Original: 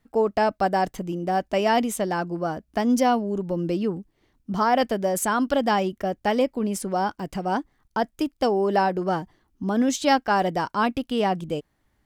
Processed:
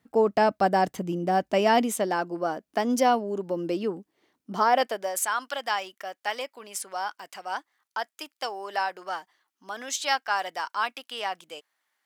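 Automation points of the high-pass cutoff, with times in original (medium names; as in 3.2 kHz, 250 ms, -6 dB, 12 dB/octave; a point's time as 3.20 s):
1.49 s 110 Hz
2.19 s 310 Hz
4.56 s 310 Hz
5.27 s 1.1 kHz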